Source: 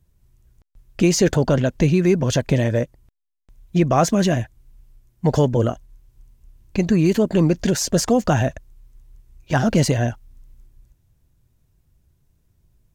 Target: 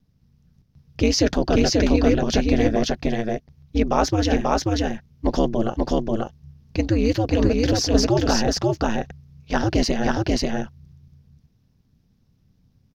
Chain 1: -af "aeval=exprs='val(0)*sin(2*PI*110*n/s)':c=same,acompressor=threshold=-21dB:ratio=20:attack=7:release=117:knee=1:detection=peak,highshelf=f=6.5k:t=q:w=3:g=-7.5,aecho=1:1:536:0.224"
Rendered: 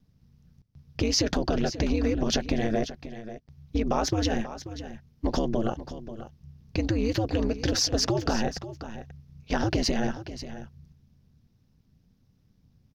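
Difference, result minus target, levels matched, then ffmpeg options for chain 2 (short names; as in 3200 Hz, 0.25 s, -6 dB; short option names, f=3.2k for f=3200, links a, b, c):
compressor: peak gain reduction +9.5 dB; echo-to-direct -11.5 dB
-af "aeval=exprs='val(0)*sin(2*PI*110*n/s)':c=same,highshelf=f=6.5k:t=q:w=3:g=-7.5,aecho=1:1:536:0.841"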